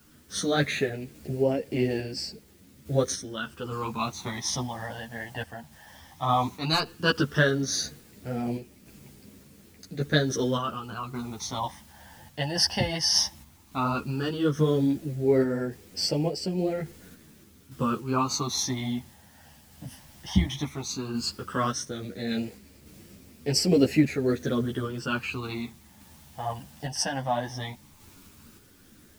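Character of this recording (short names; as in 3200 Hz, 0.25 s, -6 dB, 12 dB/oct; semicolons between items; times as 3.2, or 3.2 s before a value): phasing stages 12, 0.14 Hz, lowest notch 400–1200 Hz; a quantiser's noise floor 10-bit, dither triangular; random-step tremolo; a shimmering, thickened sound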